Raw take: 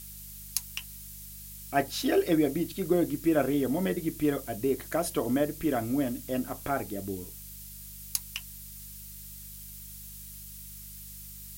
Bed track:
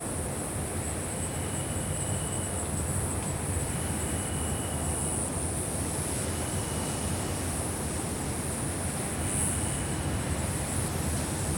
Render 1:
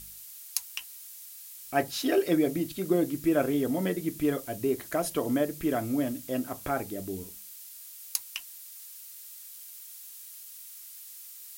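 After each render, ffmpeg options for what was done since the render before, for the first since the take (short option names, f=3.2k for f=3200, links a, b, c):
-af "bandreject=f=50:t=h:w=4,bandreject=f=100:t=h:w=4,bandreject=f=150:t=h:w=4,bandreject=f=200:t=h:w=4"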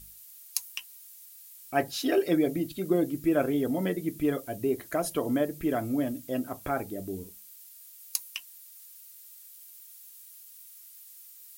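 -af "afftdn=nr=7:nf=-47"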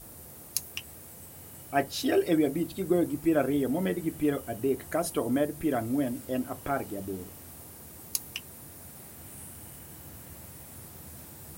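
-filter_complex "[1:a]volume=-18dB[a];[0:a][a]amix=inputs=2:normalize=0"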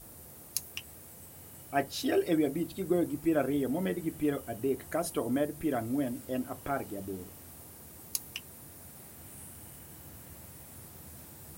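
-af "volume=-3dB"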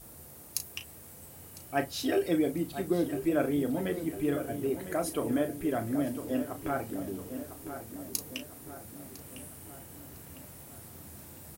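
-filter_complex "[0:a]asplit=2[a][b];[b]adelay=35,volume=-9.5dB[c];[a][c]amix=inputs=2:normalize=0,asplit=2[d][e];[e]adelay=1004,lowpass=f=2.8k:p=1,volume=-10dB,asplit=2[f][g];[g]adelay=1004,lowpass=f=2.8k:p=1,volume=0.54,asplit=2[h][i];[i]adelay=1004,lowpass=f=2.8k:p=1,volume=0.54,asplit=2[j][k];[k]adelay=1004,lowpass=f=2.8k:p=1,volume=0.54,asplit=2[l][m];[m]adelay=1004,lowpass=f=2.8k:p=1,volume=0.54,asplit=2[n][o];[o]adelay=1004,lowpass=f=2.8k:p=1,volume=0.54[p];[d][f][h][j][l][n][p]amix=inputs=7:normalize=0"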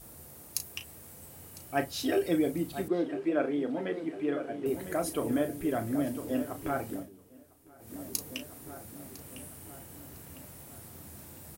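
-filter_complex "[0:a]asettb=1/sr,asplit=3[a][b][c];[a]atrim=end=2.884[d];[b]atrim=start=2.88:end=4.66,asetpts=PTS-STARTPTS,afade=t=in:d=0.004:c=qsin,afade=t=out:st=1.776:d=0.004:c=qsin,highpass=250,lowpass=3.5k[e];[c]atrim=start=4.656[f];[d][e]acrossfade=d=0.004:c1=hsin:c2=qsin[g];[g][f]acrossfade=d=0.004:c1=qsin:c2=hsin,asplit=3[h][i][j];[h]atrim=end=7.09,asetpts=PTS-STARTPTS,afade=t=out:st=6.94:d=0.15:silence=0.158489[k];[i]atrim=start=7.09:end=7.78,asetpts=PTS-STARTPTS,volume=-16dB[l];[j]atrim=start=7.78,asetpts=PTS-STARTPTS,afade=t=in:d=0.15:silence=0.158489[m];[k][l][m]concat=n=3:v=0:a=1"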